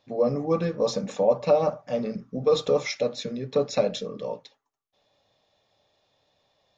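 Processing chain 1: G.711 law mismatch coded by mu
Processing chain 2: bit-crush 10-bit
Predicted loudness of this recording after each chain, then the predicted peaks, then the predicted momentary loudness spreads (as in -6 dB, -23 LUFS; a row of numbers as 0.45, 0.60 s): -25.5, -26.0 LUFS; -8.5, -9.0 dBFS; 10, 11 LU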